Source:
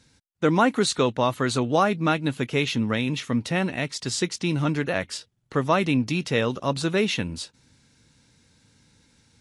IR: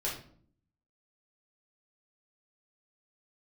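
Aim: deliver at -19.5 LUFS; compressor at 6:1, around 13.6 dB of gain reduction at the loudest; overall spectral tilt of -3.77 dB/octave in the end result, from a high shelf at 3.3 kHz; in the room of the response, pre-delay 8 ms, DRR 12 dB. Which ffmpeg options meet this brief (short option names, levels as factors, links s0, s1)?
-filter_complex "[0:a]highshelf=f=3300:g=9,acompressor=threshold=0.0316:ratio=6,asplit=2[s0][s1];[1:a]atrim=start_sample=2205,adelay=8[s2];[s1][s2]afir=irnorm=-1:irlink=0,volume=0.15[s3];[s0][s3]amix=inputs=2:normalize=0,volume=4.73"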